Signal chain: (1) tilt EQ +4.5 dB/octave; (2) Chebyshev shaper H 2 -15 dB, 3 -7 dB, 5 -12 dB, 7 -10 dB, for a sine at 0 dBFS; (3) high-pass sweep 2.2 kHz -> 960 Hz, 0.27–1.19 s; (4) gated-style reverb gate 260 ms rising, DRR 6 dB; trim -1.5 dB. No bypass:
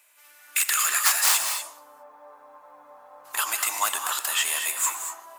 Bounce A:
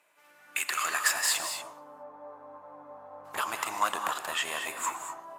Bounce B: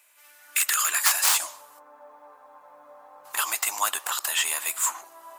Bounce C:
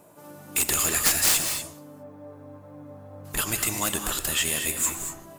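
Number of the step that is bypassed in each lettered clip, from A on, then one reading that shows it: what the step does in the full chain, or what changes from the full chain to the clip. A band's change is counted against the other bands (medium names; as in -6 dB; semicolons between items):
1, 250 Hz band +10.5 dB; 4, momentary loudness spread change -2 LU; 3, 250 Hz band +21.5 dB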